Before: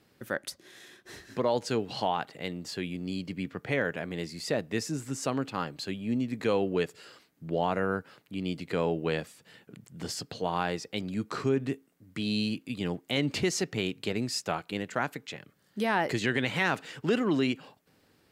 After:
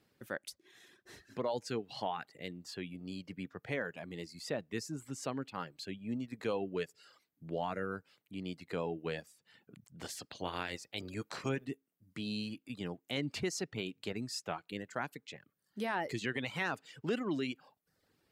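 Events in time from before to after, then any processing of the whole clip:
0:10.00–0:11.64: ceiling on every frequency bin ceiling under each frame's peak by 15 dB
whole clip: reverb reduction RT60 0.69 s; level −7.5 dB

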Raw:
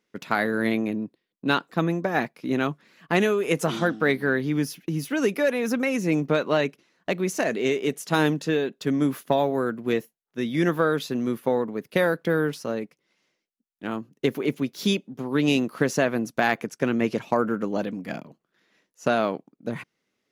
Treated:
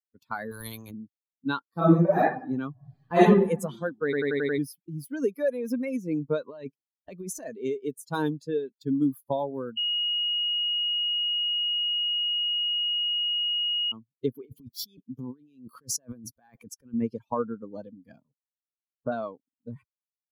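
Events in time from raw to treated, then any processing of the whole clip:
0:00.51–0:00.91: every bin compressed towards the loudest bin 2 to 1
0:01.66–0:02.21: thrown reverb, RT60 0.89 s, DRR −8 dB
0:02.71–0:03.22: thrown reverb, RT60 1.3 s, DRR −9.5 dB
0:04.04: stutter in place 0.09 s, 6 plays
0:06.44–0:07.45: compressor whose output falls as the input rises −26 dBFS
0:09.77–0:13.92: beep over 2,880 Hz −14 dBFS
0:14.45–0:16.94: compressor whose output falls as the input rises −33 dBFS
0:18.20–0:19.12: Butterworth low-pass 1,800 Hz
whole clip: spectral dynamics exaggerated over time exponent 2; parametric band 2,500 Hz −12.5 dB 1.5 octaves; level +1.5 dB

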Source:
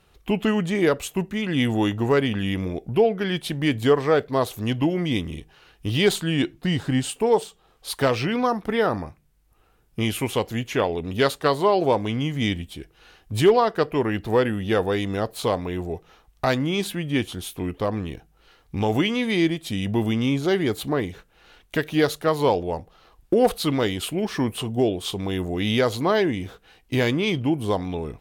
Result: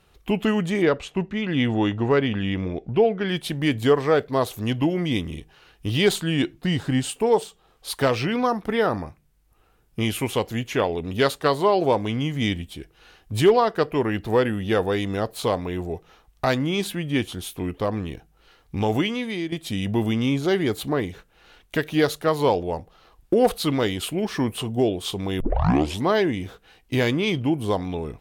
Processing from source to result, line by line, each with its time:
0:00.82–0:03.29: low-pass filter 4,200 Hz
0:18.90–0:19.52: fade out, to −11.5 dB
0:25.40: tape start 0.67 s

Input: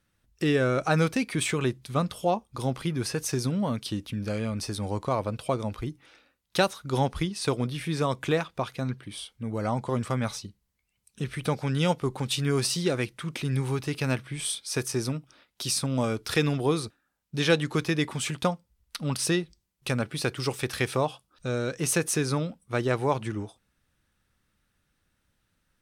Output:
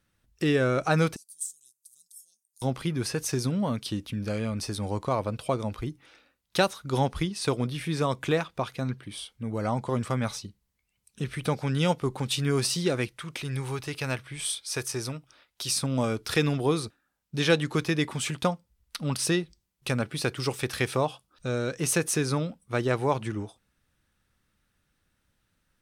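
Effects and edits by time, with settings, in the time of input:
0:01.16–0:02.62: inverse Chebyshev high-pass filter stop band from 2,300 Hz, stop band 60 dB
0:13.07–0:15.70: parametric band 220 Hz −8 dB 1.6 octaves

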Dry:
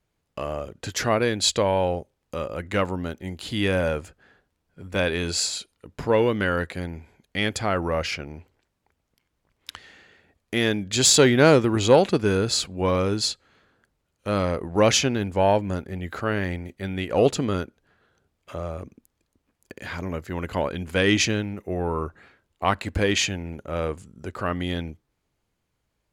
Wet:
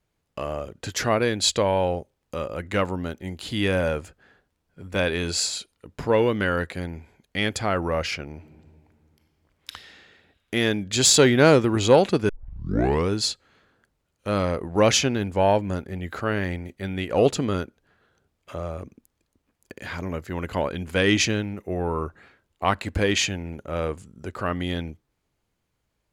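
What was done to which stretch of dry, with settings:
0:08.33–0:09.72: thrown reverb, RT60 2.3 s, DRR 3.5 dB
0:12.29: tape start 0.81 s

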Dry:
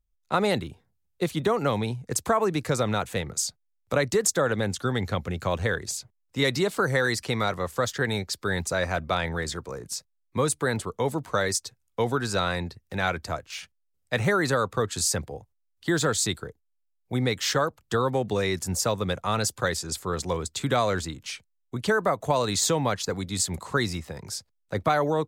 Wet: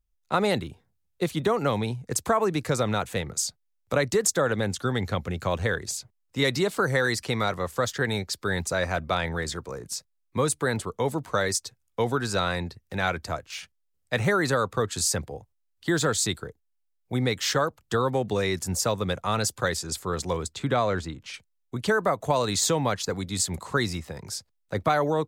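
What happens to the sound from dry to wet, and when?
0:20.53–0:21.34: low-pass filter 2,700 Hz 6 dB per octave

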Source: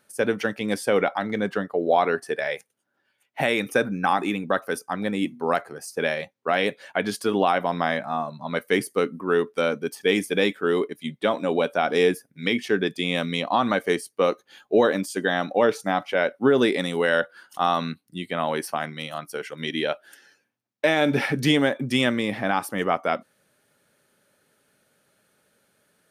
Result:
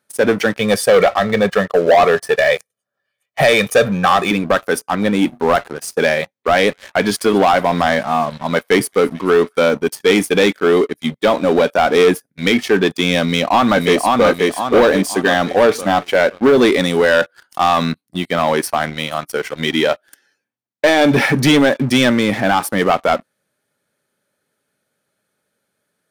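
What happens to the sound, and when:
0:00.59–0:04.31: comb filter 1.7 ms, depth 79%
0:06.22–0:09.68: delay with a high-pass on its return 219 ms, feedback 78%, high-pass 2,200 Hz, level −22.5 dB
0:13.23–0:14.27: delay throw 530 ms, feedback 40%, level −3 dB
whole clip: high-pass filter 55 Hz; notch filter 2,800 Hz, Q 18; leveller curve on the samples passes 3

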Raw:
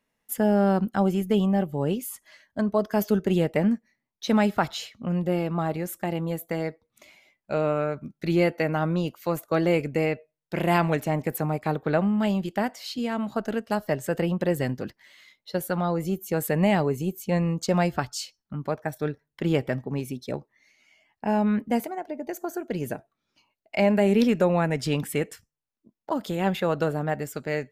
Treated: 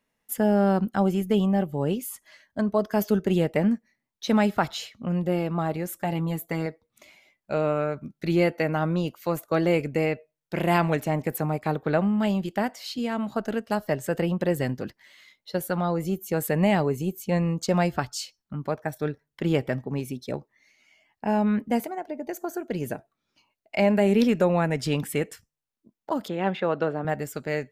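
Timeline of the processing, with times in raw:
0:05.98–0:06.66: comb filter 7 ms, depth 57%
0:26.28–0:27.05: band-pass filter 190–3,100 Hz

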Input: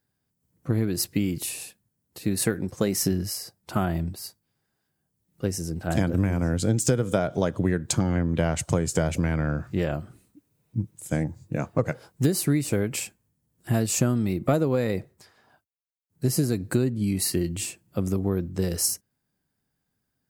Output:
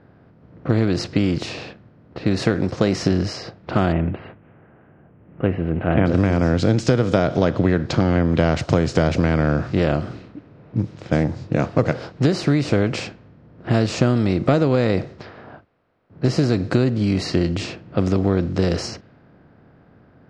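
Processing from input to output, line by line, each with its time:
0:03.92–0:06.06: Butterworth low-pass 2,900 Hz 72 dB per octave
0:07.38–0:08.32: low-pass filter 4,900 Hz
whole clip: compressor on every frequency bin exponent 0.6; low-pass filter 4,800 Hz 24 dB per octave; low-pass that shuts in the quiet parts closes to 1,500 Hz, open at −20.5 dBFS; level +3 dB

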